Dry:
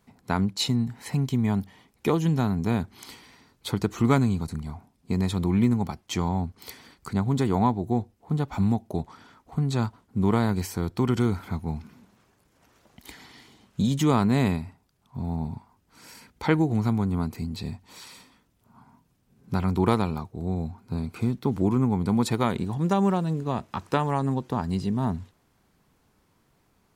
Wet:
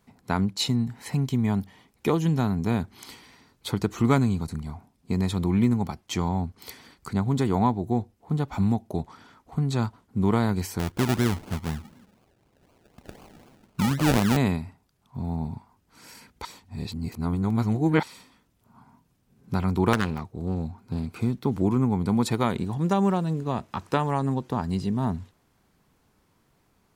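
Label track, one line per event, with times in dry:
10.790000	14.370000	decimation with a swept rate 33×, swing 60% 4 Hz
16.450000	18.030000	reverse
19.930000	21.150000	self-modulated delay depth 0.57 ms

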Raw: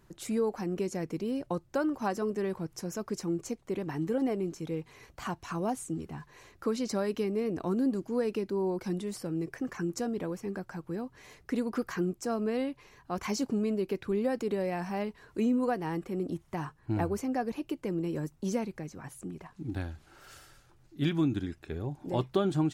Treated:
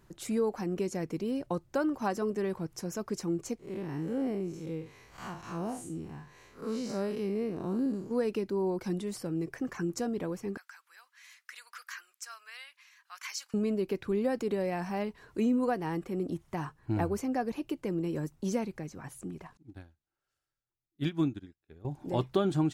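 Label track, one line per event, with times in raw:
3.590000	8.110000	time blur width 0.123 s
10.570000	13.540000	HPF 1400 Hz 24 dB/oct
19.570000	21.850000	upward expander 2.5:1, over -47 dBFS

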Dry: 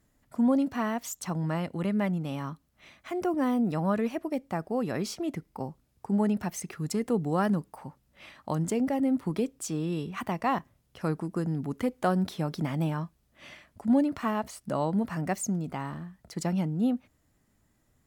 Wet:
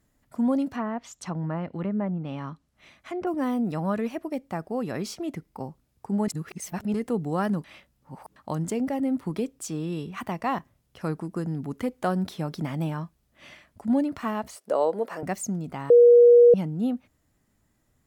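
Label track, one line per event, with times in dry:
0.710000	3.270000	treble ducked by the level closes to 1100 Hz, closed at -24.5 dBFS
6.280000	6.940000	reverse
7.640000	8.360000	reverse
14.560000	15.230000	resonant high-pass 470 Hz, resonance Q 3.7
15.900000	16.540000	bleep 479 Hz -10 dBFS

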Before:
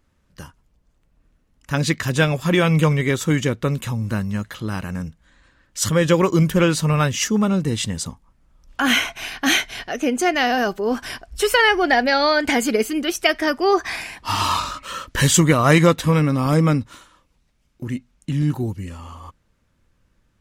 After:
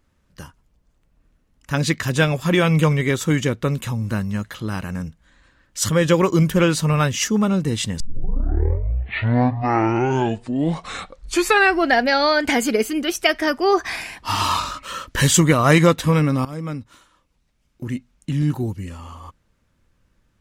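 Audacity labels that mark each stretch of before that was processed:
8.000000	8.000000	tape start 4.06 s
16.450000	17.860000	fade in, from -17.5 dB

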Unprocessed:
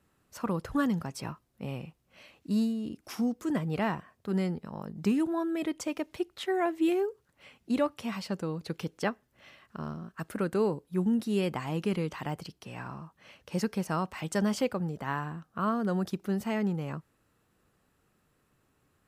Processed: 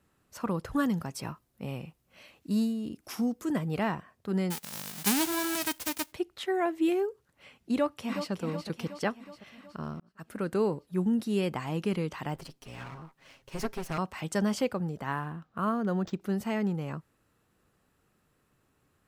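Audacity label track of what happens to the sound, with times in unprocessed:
0.730000	3.830000	high shelf 9800 Hz +6.5 dB
4.500000	6.110000	spectral whitening exponent 0.1
7.720000	8.320000	echo throw 0.37 s, feedback 60%, level -8.5 dB
10.000000	10.550000	fade in
12.340000	13.980000	minimum comb delay 7.4 ms
15.120000	16.210000	decimation joined by straight lines rate divided by 4×

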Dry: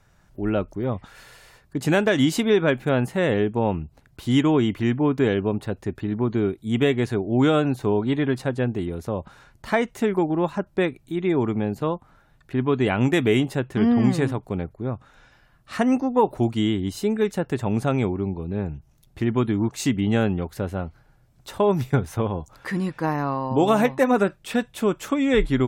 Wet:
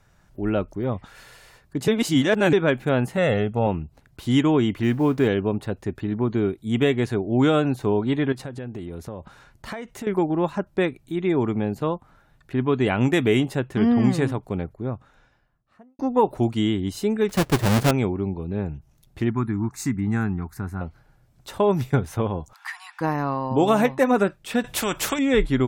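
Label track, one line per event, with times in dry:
1.880000	2.530000	reverse
3.170000	3.670000	comb 1.5 ms, depth 58%
4.830000	5.280000	G.711 law mismatch coded by mu
8.320000	10.070000	compressor 10:1, threshold -29 dBFS
14.670000	15.990000	studio fade out
17.290000	17.910000	half-waves squared off
19.300000	20.810000	fixed phaser centre 1300 Hz, stages 4
22.530000	23.010000	steep high-pass 750 Hz 96 dB/oct
24.640000	25.190000	spectral compressor 2:1

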